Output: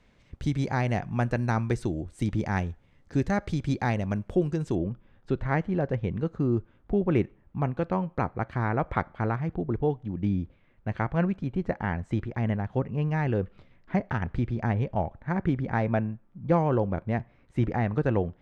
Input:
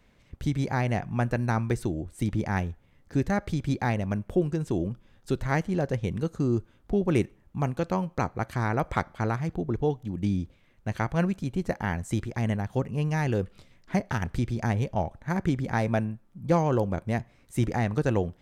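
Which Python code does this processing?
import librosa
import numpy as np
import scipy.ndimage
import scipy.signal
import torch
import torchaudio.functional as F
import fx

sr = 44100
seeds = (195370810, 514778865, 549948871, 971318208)

y = fx.lowpass(x, sr, hz=fx.steps((0.0, 7500.0), (4.75, 2400.0)), slope=12)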